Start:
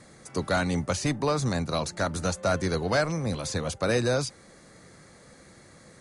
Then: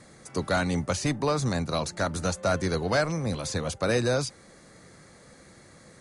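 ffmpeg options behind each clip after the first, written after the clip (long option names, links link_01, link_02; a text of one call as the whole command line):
ffmpeg -i in.wav -af anull out.wav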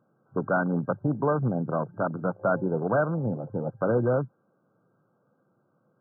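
ffmpeg -i in.wav -af "afwtdn=0.0282,afftfilt=real='re*between(b*sr/4096,100,1600)':imag='im*between(b*sr/4096,100,1600)':win_size=4096:overlap=0.75,volume=1.5dB" out.wav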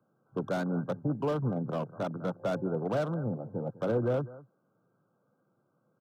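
ffmpeg -i in.wav -filter_complex "[0:a]aecho=1:1:201:0.112,acrossover=split=170|390|680[link_01][link_02][link_03][link_04];[link_04]asoftclip=type=hard:threshold=-34dB[link_05];[link_01][link_02][link_03][link_05]amix=inputs=4:normalize=0,volume=-4.5dB" out.wav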